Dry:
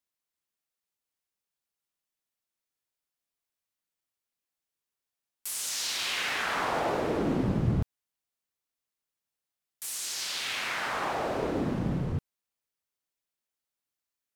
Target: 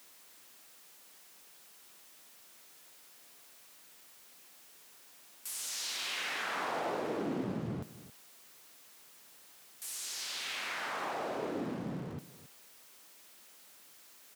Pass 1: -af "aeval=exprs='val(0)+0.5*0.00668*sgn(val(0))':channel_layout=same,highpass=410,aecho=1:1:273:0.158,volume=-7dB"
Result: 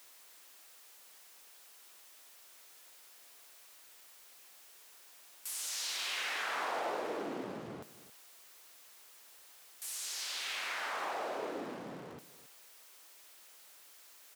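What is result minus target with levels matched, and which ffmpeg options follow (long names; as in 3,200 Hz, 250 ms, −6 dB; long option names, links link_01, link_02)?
250 Hz band −6.5 dB
-af "aeval=exprs='val(0)+0.5*0.00668*sgn(val(0))':channel_layout=same,highpass=180,aecho=1:1:273:0.158,volume=-7dB"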